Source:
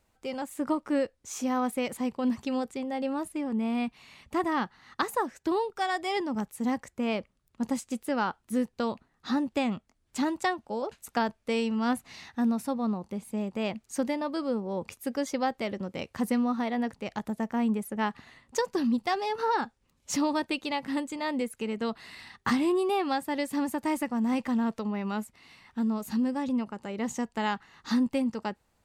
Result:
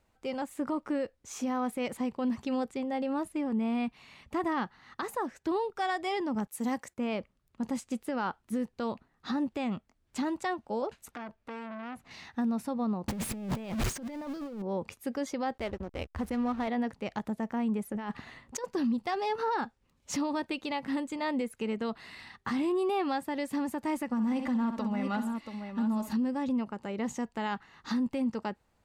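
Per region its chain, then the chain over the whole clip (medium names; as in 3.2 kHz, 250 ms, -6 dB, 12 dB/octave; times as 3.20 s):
6.47–6.98 s: high-pass 190 Hz 6 dB/octave + treble shelf 5.9 kHz +11 dB + gate -59 dBFS, range -10 dB
11.11–12.11 s: treble shelf 4.8 kHz -9 dB + compression 2.5:1, threshold -35 dBFS + transformer saturation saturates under 1.6 kHz
13.08–14.62 s: jump at every zero crossing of -32 dBFS + compressor with a negative ratio -38 dBFS + bass shelf 230 Hz +6 dB
15.58–16.68 s: resonant low shelf 100 Hz +13.5 dB, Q 3 + hysteresis with a dead band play -36.5 dBFS
17.91–18.64 s: compressor with a negative ratio -35 dBFS + tape noise reduction on one side only decoder only
24.10–26.13 s: comb 3.5 ms, depth 55% + multi-tap echo 64/132/682 ms -11/-19/-8.5 dB
whole clip: treble shelf 5 kHz -7 dB; peak limiter -23.5 dBFS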